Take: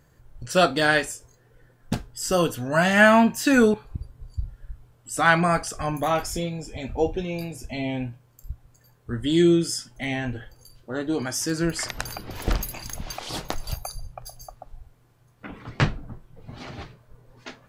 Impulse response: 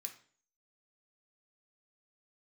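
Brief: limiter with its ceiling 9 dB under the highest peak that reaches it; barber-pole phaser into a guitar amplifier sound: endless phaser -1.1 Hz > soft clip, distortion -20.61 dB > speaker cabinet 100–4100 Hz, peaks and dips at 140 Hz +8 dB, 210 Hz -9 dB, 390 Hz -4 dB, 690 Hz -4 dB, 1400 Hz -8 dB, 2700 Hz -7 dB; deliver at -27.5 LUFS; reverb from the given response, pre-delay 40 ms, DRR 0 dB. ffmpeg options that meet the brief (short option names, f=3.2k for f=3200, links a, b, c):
-filter_complex "[0:a]alimiter=limit=-12.5dB:level=0:latency=1,asplit=2[a][b];[1:a]atrim=start_sample=2205,adelay=40[c];[b][c]afir=irnorm=-1:irlink=0,volume=5dB[d];[a][d]amix=inputs=2:normalize=0,asplit=2[e][f];[f]afreqshift=-1.1[g];[e][g]amix=inputs=2:normalize=1,asoftclip=threshold=-13dB,highpass=100,equalizer=f=140:t=q:w=4:g=8,equalizer=f=210:t=q:w=4:g=-9,equalizer=f=390:t=q:w=4:g=-4,equalizer=f=690:t=q:w=4:g=-4,equalizer=f=1.4k:t=q:w=4:g=-8,equalizer=f=2.7k:t=q:w=4:g=-7,lowpass=f=4.1k:w=0.5412,lowpass=f=4.1k:w=1.3066,volume=3dB"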